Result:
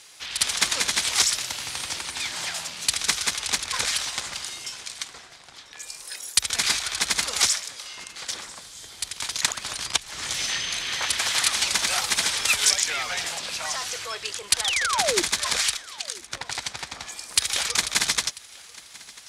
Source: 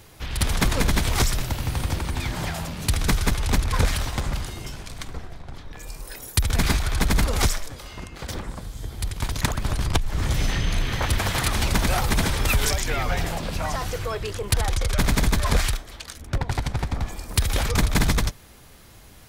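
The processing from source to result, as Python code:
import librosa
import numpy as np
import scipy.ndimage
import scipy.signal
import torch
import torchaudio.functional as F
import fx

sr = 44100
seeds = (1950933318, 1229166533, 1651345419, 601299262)

p1 = fx.weighting(x, sr, curve='ITU-R 468')
p2 = fx.cheby_harmonics(p1, sr, harmonics=(2,), levels_db=(-36,), full_scale_db=0.5)
p3 = fx.spec_paint(p2, sr, seeds[0], shape='fall', start_s=14.64, length_s=0.58, low_hz=320.0, high_hz=3800.0, level_db=-22.0)
p4 = p3 + fx.echo_single(p3, sr, ms=992, db=-22.0, dry=0)
y = F.gain(torch.from_numpy(p4), -4.0).numpy()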